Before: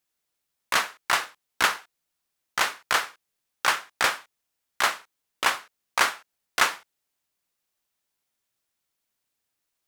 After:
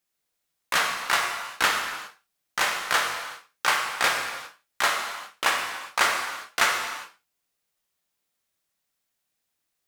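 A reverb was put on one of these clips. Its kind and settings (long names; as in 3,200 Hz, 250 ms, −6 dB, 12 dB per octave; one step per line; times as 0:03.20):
reverb whose tail is shaped and stops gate 430 ms falling, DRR 0 dB
level −1.5 dB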